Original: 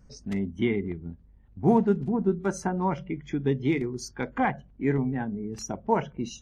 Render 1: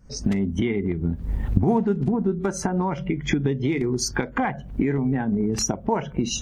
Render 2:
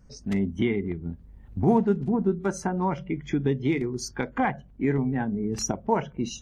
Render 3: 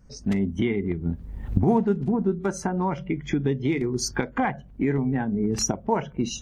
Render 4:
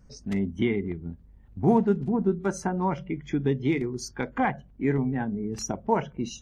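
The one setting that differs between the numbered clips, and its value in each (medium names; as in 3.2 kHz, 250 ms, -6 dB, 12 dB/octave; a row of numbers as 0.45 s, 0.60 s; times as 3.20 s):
recorder AGC, rising by: 88 dB/s, 13 dB/s, 35 dB/s, 5.2 dB/s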